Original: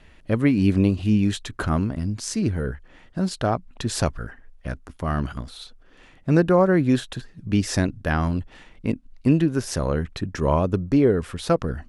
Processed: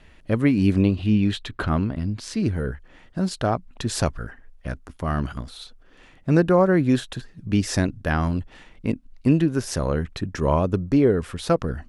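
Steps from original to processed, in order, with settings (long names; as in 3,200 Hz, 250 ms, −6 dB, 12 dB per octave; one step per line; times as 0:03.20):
0:00.81–0:02.40: high shelf with overshoot 5,000 Hz −7 dB, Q 1.5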